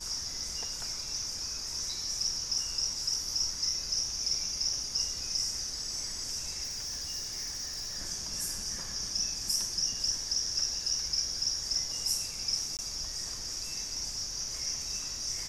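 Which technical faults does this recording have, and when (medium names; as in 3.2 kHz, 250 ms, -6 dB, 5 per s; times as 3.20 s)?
6.63–7.98 s: clipped -33 dBFS
12.77–12.79 s: dropout 18 ms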